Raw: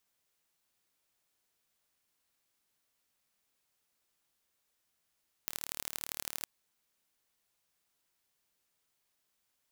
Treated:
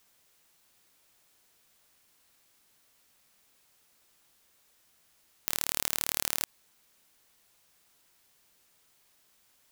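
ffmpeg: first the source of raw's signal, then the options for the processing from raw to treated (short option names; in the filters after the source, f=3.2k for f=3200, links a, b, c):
-f lavfi -i "aevalsrc='0.422*eq(mod(n,1173),0)*(0.5+0.5*eq(mod(n,3519),0))':d=0.97:s=44100"
-af "alimiter=level_in=13dB:limit=-1dB:release=50:level=0:latency=1"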